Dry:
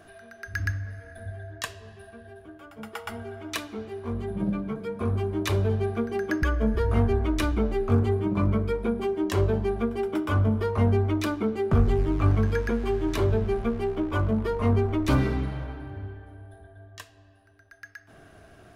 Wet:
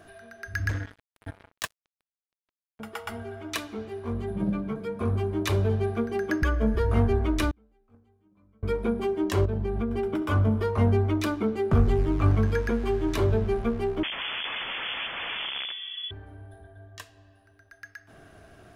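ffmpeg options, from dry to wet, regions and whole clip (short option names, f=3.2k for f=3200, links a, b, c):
-filter_complex "[0:a]asettb=1/sr,asplit=3[a][b][c];[a]atrim=end=0.694[d];[b]atrim=start=0.69:end=2.8,asetpts=PTS-STARTPTS,afade=t=in:d=0.004:c=qsin,afade=t=out:st=2.106:d=0.004:c=qsin,highpass=f=40:w=0.5412,highpass=f=40:w=1.3066,acrusher=bits=4:mix=0:aa=0.5[e];[c]atrim=start=2.796[f];[d][e]acrossfade=d=0.004:c1=hsin:c2=qsin[g];[g][f]acrossfade=d=0.004:c1=qsin:c2=hsin,asettb=1/sr,asplit=3[h][i][j];[h]atrim=end=7.514[k];[i]atrim=start=7.51:end=8.63,asetpts=PTS-STARTPTS,afade=t=in:d=0.004:c=qsin,afade=t=out:st=1.116:d=0.004:c=qsin,agate=range=-38dB:threshold=-14dB:ratio=16:release=100:detection=peak,aecho=1:1:3.9:0.42,atrim=end_sample=49392[l];[j]atrim=start=8.626[m];[k][l]acrossfade=d=0.004:c1=hsin:c2=qsin[n];[n][m]acrossfade=d=0.004:c1=qsin:c2=hsin,asettb=1/sr,asplit=3[o][p][q];[o]atrim=end=9.454[r];[p]atrim=start=9.45:end=10.22,asetpts=PTS-STARTPTS,afade=t=in:d=0.004:c=qsin,afade=t=out:st=0.766:d=0.004:c=qsin,bass=f=250:g=7,treble=f=4k:g=-4,acompressor=threshold=-23dB:ratio=12:attack=3.2:release=140:knee=1:detection=peak[s];[q]atrim=start=10.216[t];[r][s]acrossfade=d=0.004:c1=hsin:c2=qsin[u];[u][t]acrossfade=d=0.004:c1=qsin:c2=hsin,asettb=1/sr,asplit=3[v][w][x];[v]atrim=end=14.034[y];[w]atrim=start=14.03:end=16.11,asetpts=PTS-STARTPTS,afade=t=in:d=0.004:c=qsin,afade=t=out:st=2.076:d=0.004:c=qsin,aeval=exprs='(mod(22.4*val(0)+1,2)-1)/22.4':c=same,lowpass=f=3k:t=q:w=0.5098,lowpass=f=3k:t=q:w=0.6013,lowpass=f=3k:t=q:w=0.9,lowpass=f=3k:t=q:w=2.563,afreqshift=-3500[z];[x]atrim=start=16.106[aa];[y][z]acrossfade=d=0.004:c1=hsin:c2=qsin[ab];[ab][aa]acrossfade=d=0.004:c1=qsin:c2=hsin"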